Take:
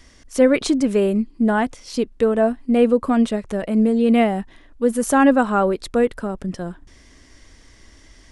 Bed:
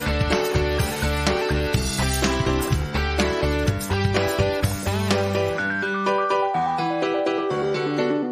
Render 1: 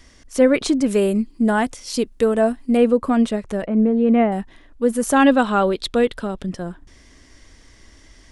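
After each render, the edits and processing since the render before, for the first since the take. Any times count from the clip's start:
0:00.86–0:02.77: high-shelf EQ 5,200 Hz +11 dB
0:03.66–0:04.32: low-pass filter 1,800 Hz
0:05.16–0:06.49: parametric band 3,500 Hz +12 dB 0.74 octaves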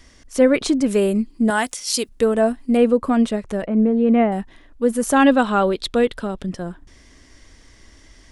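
0:01.50–0:02.09: spectral tilt +3 dB per octave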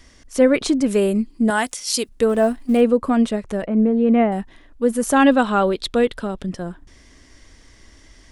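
0:02.29–0:02.81: mu-law and A-law mismatch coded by mu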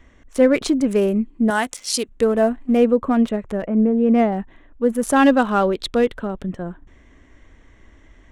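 adaptive Wiener filter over 9 samples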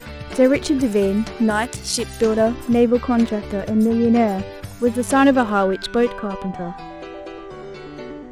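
mix in bed −11.5 dB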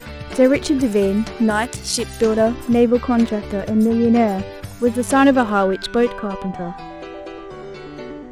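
level +1 dB

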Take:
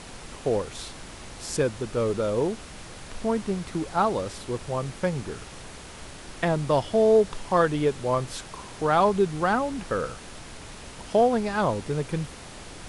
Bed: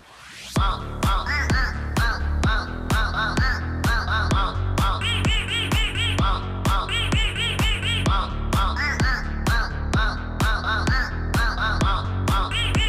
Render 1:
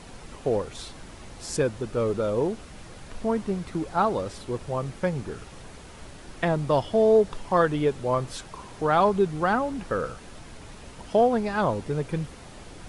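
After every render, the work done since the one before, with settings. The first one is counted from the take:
broadband denoise 6 dB, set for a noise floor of −43 dBFS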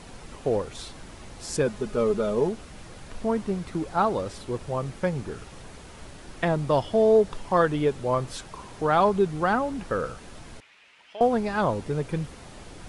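0:01.66–0:02.49: comb filter 4.8 ms, depth 59%
0:10.60–0:11.21: resonant band-pass 2,400 Hz, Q 2.2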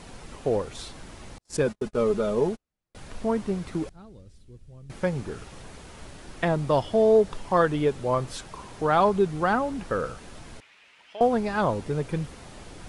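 0:01.38–0:02.95: noise gate −34 dBFS, range −45 dB
0:03.89–0:04.90: guitar amp tone stack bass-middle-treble 10-0-1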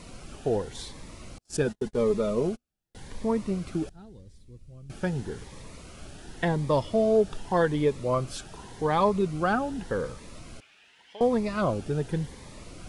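phaser whose notches keep moving one way rising 0.87 Hz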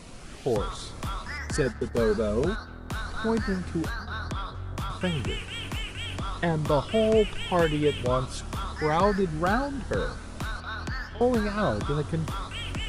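mix in bed −12 dB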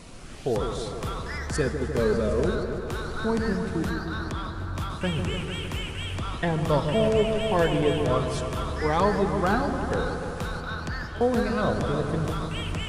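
echo whose low-pass opens from repeat to repeat 152 ms, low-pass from 750 Hz, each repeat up 1 octave, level −6 dB
four-comb reverb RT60 3.4 s, combs from 33 ms, DRR 12 dB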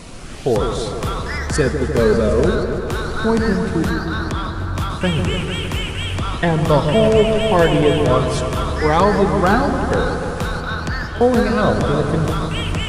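level +9 dB
brickwall limiter −3 dBFS, peak gain reduction 2 dB

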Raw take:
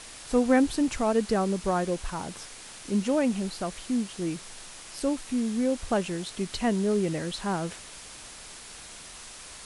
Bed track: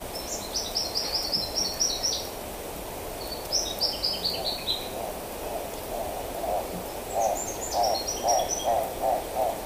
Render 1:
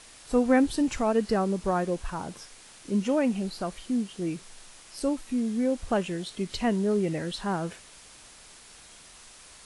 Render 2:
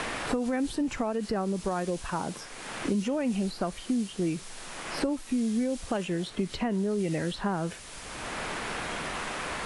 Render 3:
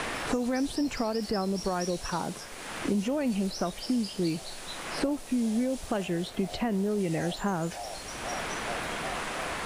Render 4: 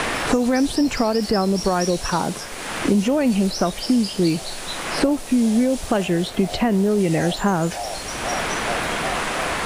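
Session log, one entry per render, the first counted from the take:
noise reduction from a noise print 6 dB
brickwall limiter −21.5 dBFS, peak gain reduction 11 dB; multiband upward and downward compressor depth 100%
mix in bed track −15 dB
level +10 dB

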